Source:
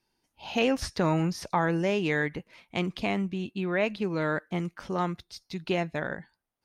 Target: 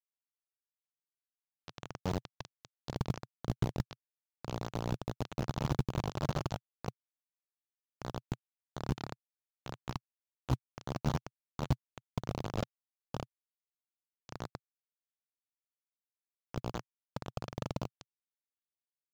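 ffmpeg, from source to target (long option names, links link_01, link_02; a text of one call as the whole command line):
ffmpeg -i in.wav -filter_complex "[0:a]equalizer=frequency=4400:width_type=o:width=0.82:gain=-4,areverse,acompressor=threshold=-39dB:ratio=4,areverse,asplit=2[link_01][link_02];[link_02]adelay=49,volume=-5.5dB[link_03];[link_01][link_03]amix=inputs=2:normalize=0,asplit=2[link_04][link_05];[link_05]adelay=198,lowpass=frequency=3500:poles=1,volume=-4dB,asplit=2[link_06][link_07];[link_07]adelay=198,lowpass=frequency=3500:poles=1,volume=0.49,asplit=2[link_08][link_09];[link_09]adelay=198,lowpass=frequency=3500:poles=1,volume=0.49,asplit=2[link_10][link_11];[link_11]adelay=198,lowpass=frequency=3500:poles=1,volume=0.49,asplit=2[link_12][link_13];[link_13]adelay=198,lowpass=frequency=3500:poles=1,volume=0.49,asplit=2[link_14][link_15];[link_15]adelay=198,lowpass=frequency=3500:poles=1,volume=0.49[link_16];[link_06][link_08][link_10][link_12][link_14][link_16]amix=inputs=6:normalize=0[link_17];[link_04][link_17]amix=inputs=2:normalize=0,acrusher=bits=4:mix=0:aa=0.000001,asetrate=15303,aresample=44100,equalizer=frequency=125:width_type=o:width=1:gain=9,equalizer=frequency=2000:width_type=o:width=1:gain=-8,equalizer=frequency=8000:width_type=o:width=1:gain=-8,tremolo=f=24:d=0.261,acrusher=bits=7:mode=log:mix=0:aa=0.000001,volume=1.5dB" out.wav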